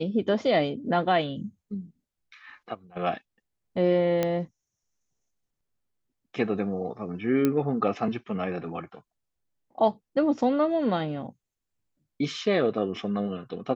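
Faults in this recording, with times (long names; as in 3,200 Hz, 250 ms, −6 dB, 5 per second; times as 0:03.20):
0:04.23: click −12 dBFS
0:07.45: click −11 dBFS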